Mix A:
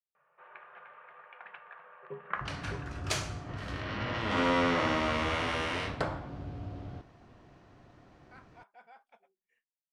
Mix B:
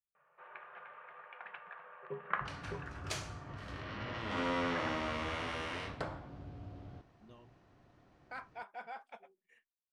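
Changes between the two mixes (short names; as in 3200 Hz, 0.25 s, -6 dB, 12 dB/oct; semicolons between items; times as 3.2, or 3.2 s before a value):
speech +10.0 dB; second sound -7.5 dB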